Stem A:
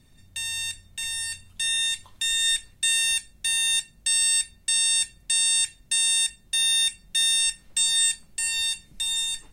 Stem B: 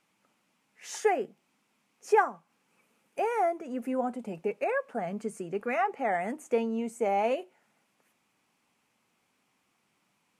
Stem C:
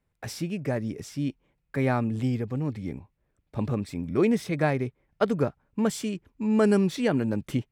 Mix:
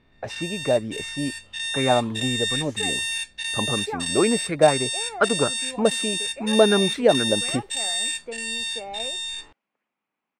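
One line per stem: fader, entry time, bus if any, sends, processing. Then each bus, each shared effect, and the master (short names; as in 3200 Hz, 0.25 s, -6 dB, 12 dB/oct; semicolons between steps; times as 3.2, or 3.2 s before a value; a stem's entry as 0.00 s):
0.0 dB, 0.00 s, no send, spectral dilation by 0.12 s; high shelf 5800 Hz -8 dB
-8.5 dB, 1.75 s, no send, bell 210 Hz +4.5 dB
-0.5 dB, 0.00 s, no send, low shelf 440 Hz +7.5 dB; LFO bell 4.1 Hz 560–1600 Hz +12 dB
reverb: off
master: low-pass opened by the level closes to 2700 Hz, open at -21 dBFS; tone controls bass -10 dB, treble -4 dB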